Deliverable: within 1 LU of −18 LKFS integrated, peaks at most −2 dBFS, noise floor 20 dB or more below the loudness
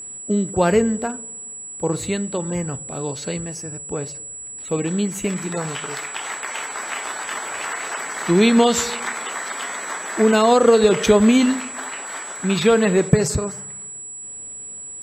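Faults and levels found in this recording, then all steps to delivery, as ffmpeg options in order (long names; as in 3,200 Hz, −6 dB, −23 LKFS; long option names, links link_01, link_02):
interfering tone 7,800 Hz; level of the tone −32 dBFS; integrated loudness −20.5 LKFS; sample peak −1.5 dBFS; target loudness −18.0 LKFS
→ -af "bandreject=frequency=7800:width=30"
-af "volume=2.5dB,alimiter=limit=-2dB:level=0:latency=1"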